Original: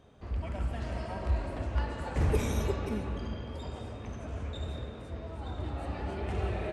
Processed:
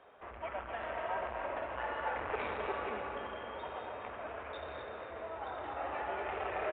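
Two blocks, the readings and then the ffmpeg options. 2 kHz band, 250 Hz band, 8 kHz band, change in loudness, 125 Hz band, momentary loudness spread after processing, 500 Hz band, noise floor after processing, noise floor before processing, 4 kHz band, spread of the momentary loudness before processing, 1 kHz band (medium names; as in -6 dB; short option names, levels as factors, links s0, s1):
+4.0 dB, -12.5 dB, under -30 dB, -4.5 dB, -22.5 dB, 7 LU, -1.0 dB, -48 dBFS, -44 dBFS, -4.0 dB, 11 LU, +4.5 dB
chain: -filter_complex "[0:a]asoftclip=type=tanh:threshold=0.0299,lowshelf=f=440:g=-8.5,asplit=2[s0][s1];[s1]aecho=0:1:249:0.376[s2];[s0][s2]amix=inputs=2:normalize=0,aresample=8000,aresample=44100,acrossover=split=420 2600:gain=0.1 1 0.0794[s3][s4][s5];[s3][s4][s5]amix=inputs=3:normalize=0,volume=2.66"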